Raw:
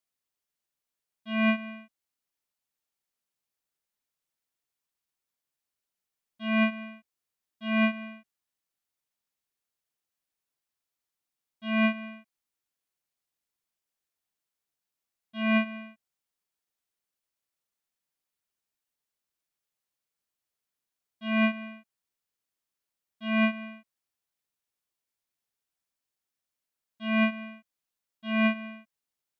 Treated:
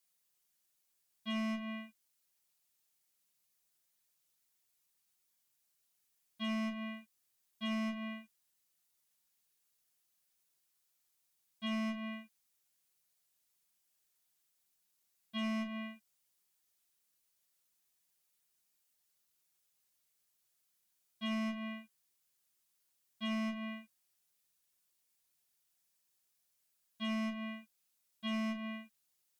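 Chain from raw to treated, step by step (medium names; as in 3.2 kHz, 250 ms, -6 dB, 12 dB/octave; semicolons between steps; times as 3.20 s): dynamic bell 2.1 kHz, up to -5 dB, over -43 dBFS, Q 1.6; peak limiter -22.5 dBFS, peak gain reduction 5.5 dB; treble shelf 3.7 kHz +10.5 dB; one-sided clip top -27.5 dBFS; compression 6:1, threshold -36 dBFS, peak gain reduction 9 dB; on a send: reverberation, pre-delay 5 ms, DRR 1.5 dB; on the sum: trim -1.5 dB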